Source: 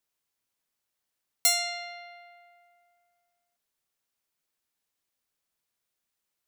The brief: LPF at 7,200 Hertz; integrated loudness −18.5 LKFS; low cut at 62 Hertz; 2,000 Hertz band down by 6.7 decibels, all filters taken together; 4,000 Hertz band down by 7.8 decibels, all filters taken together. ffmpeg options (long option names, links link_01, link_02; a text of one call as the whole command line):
ffmpeg -i in.wav -af "highpass=62,lowpass=7200,equalizer=frequency=2000:width_type=o:gain=-5,equalizer=frequency=4000:width_type=o:gain=-8,volume=16dB" out.wav